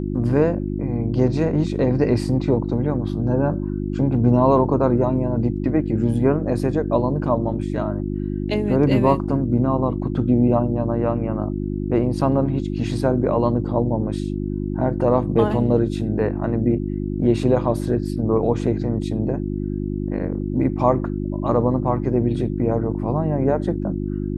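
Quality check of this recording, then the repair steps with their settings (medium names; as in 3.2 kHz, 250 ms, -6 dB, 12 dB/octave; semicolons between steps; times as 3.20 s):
hum 50 Hz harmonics 7 -25 dBFS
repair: de-hum 50 Hz, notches 7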